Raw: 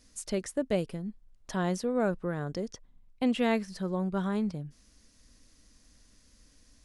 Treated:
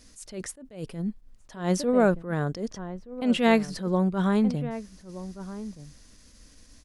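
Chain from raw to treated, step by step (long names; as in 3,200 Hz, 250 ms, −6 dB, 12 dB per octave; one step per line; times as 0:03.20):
slap from a distant wall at 210 metres, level −14 dB
level that may rise only so fast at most 140 dB per second
level +7.5 dB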